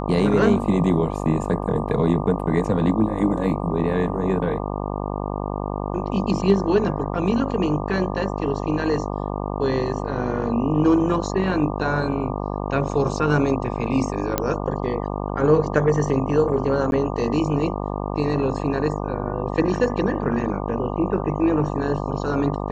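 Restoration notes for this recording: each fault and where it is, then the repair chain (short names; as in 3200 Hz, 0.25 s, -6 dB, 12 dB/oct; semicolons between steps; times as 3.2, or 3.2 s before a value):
buzz 50 Hz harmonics 24 -27 dBFS
14.38 pop -5 dBFS
16.91–16.92 gap 11 ms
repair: de-click; de-hum 50 Hz, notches 24; interpolate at 16.91, 11 ms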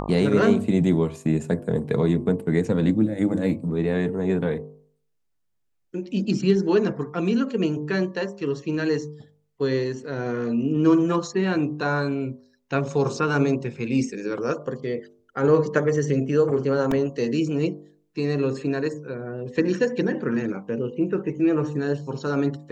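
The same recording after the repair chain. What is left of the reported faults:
none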